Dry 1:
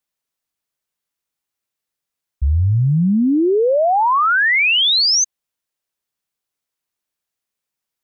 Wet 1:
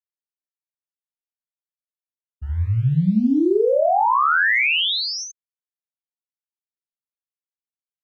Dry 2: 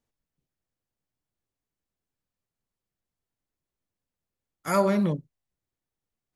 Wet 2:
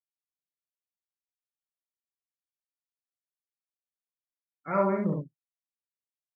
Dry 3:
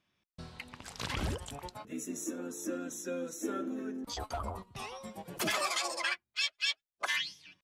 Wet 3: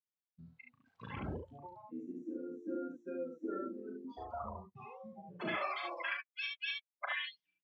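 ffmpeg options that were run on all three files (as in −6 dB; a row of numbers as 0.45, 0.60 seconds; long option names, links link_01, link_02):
-filter_complex "[0:a]lowpass=3100,acrusher=bits=6:mode=log:mix=0:aa=0.000001,highpass=97,afftdn=noise_reduction=29:noise_floor=-35,asplit=2[link_01][link_02];[link_02]aecho=0:1:37|71:0.562|0.668[link_03];[link_01][link_03]amix=inputs=2:normalize=0,volume=-5dB"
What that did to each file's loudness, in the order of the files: −4.0, −3.0, −6.0 LU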